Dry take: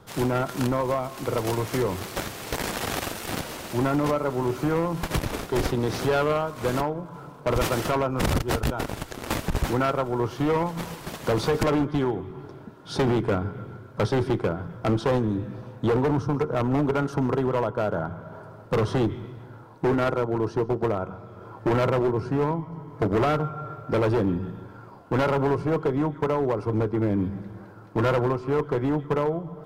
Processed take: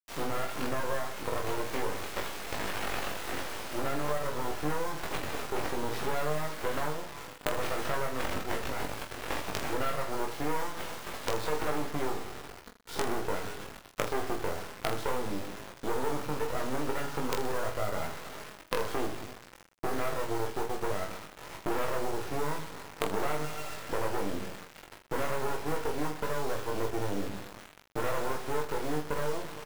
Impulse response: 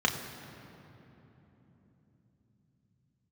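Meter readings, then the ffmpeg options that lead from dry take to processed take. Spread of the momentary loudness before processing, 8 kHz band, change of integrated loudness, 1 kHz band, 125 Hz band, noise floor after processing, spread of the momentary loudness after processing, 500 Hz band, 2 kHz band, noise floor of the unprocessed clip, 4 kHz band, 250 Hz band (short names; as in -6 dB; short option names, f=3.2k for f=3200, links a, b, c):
11 LU, -2.5 dB, -9.0 dB, -5.5 dB, -14.5 dB, -53 dBFS, 7 LU, -9.0 dB, -3.0 dB, -45 dBFS, -3.5 dB, -12.5 dB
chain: -filter_complex "[0:a]highpass=f=62:w=0.5412,highpass=f=62:w=1.3066,bass=f=250:g=-14,treble=f=4k:g=-12,acompressor=threshold=-27dB:ratio=4,acrusher=bits=4:dc=4:mix=0:aa=0.000001,asplit=2[a][b];[b]aecho=0:1:20|46|79.8|123.7|180.9:0.631|0.398|0.251|0.158|0.1[c];[a][c]amix=inputs=2:normalize=0"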